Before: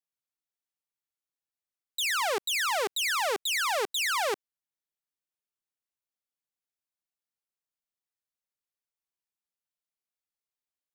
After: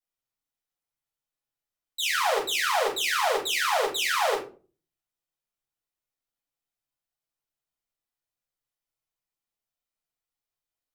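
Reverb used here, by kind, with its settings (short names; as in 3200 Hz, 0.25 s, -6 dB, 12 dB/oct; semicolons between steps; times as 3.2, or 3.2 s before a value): shoebox room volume 200 m³, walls furnished, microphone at 4.9 m; gain -6.5 dB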